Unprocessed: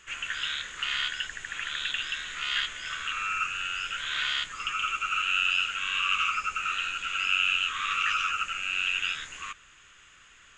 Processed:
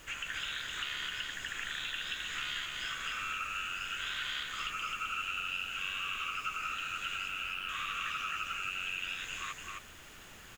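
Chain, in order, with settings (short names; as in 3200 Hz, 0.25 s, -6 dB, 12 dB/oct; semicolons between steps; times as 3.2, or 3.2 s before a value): 7.28–7.69 LPF 2200 Hz; compressor, threshold -35 dBFS, peak gain reduction 13 dB; added noise pink -56 dBFS; on a send: echo 0.261 s -3.5 dB; on the sum: gain -1 dB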